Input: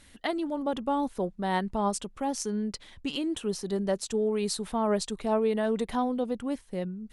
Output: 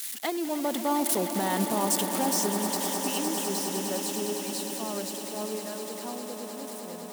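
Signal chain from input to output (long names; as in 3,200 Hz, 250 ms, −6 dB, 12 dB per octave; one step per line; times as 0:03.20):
spike at every zero crossing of −25.5 dBFS
source passing by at 0:01.47, 11 m/s, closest 5.3 metres
high-pass filter 180 Hz 24 dB per octave
brickwall limiter −24.5 dBFS, peak gain reduction 11.5 dB
on a send: echo that builds up and dies away 102 ms, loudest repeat 8, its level −12 dB
on the sum: level +8 dB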